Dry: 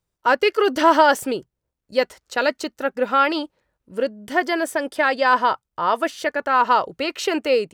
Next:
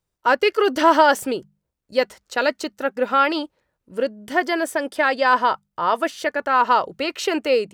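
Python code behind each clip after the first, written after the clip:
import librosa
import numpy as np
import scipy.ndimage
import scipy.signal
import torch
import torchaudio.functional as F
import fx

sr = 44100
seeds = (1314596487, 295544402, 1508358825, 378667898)

y = fx.hum_notches(x, sr, base_hz=50, count=4)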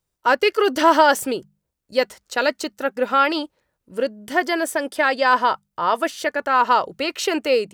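y = fx.high_shelf(x, sr, hz=5100.0, db=5.0)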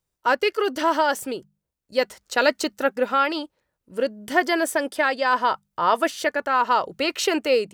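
y = fx.rider(x, sr, range_db=10, speed_s=0.5)
y = y * 10.0 ** (-2.0 / 20.0)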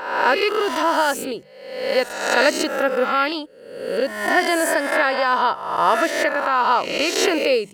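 y = fx.spec_swells(x, sr, rise_s=0.92)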